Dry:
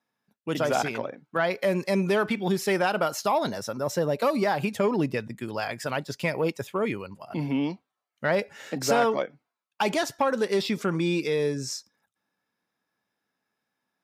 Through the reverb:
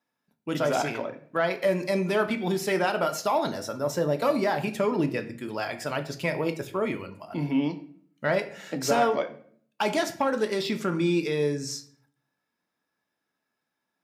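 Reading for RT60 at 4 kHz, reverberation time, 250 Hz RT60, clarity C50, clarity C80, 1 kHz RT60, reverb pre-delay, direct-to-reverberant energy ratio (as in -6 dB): 0.40 s, 0.55 s, 0.80 s, 13.0 dB, 16.5 dB, 0.50 s, 3 ms, 6.5 dB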